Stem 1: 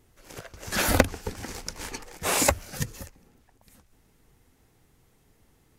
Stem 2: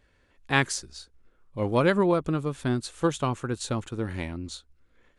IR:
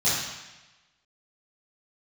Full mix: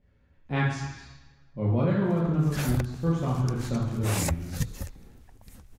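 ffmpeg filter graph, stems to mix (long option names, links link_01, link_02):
-filter_complex "[0:a]adelay=1800,volume=2dB[link_01];[1:a]aemphasis=mode=reproduction:type=75fm,volume=-12dB,asplit=3[link_02][link_03][link_04];[link_03]volume=-7dB[link_05];[link_04]apad=whole_len=338803[link_06];[link_01][link_06]sidechaincompress=threshold=-47dB:ratio=8:attack=31:release=747[link_07];[2:a]atrim=start_sample=2205[link_08];[link_05][link_08]afir=irnorm=-1:irlink=0[link_09];[link_07][link_02][link_09]amix=inputs=3:normalize=0,lowshelf=frequency=160:gain=11,alimiter=limit=-15.5dB:level=0:latency=1:release=408"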